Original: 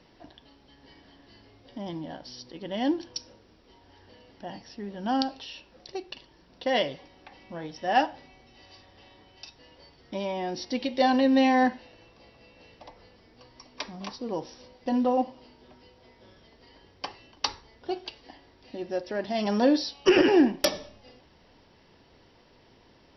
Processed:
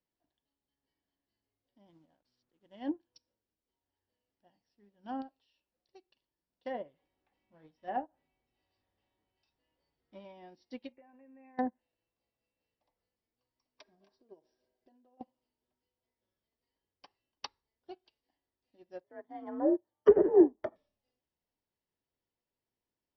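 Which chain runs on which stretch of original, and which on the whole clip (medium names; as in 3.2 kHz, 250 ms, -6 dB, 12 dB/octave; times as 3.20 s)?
1.86–2.83 s: send-on-delta sampling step -46 dBFS + distance through air 75 m
6.93–10.25 s: companding laws mixed up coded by mu + distance through air 140 m + doubling 19 ms -11 dB
10.92–11.59 s: brick-wall FIR low-pass 2.8 kHz + compression 20:1, threshold -30 dBFS
13.81–15.21 s: compression 16:1, threshold -37 dBFS + small resonant body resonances 390/630/1600 Hz, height 15 dB, ringing for 55 ms
19.04–20.76 s: Savitzky-Golay filter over 41 samples + frequency shift +48 Hz
whole clip: low-pass that closes with the level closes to 640 Hz, closed at -19.5 dBFS; upward expansion 2.5:1, over -40 dBFS; trim +1.5 dB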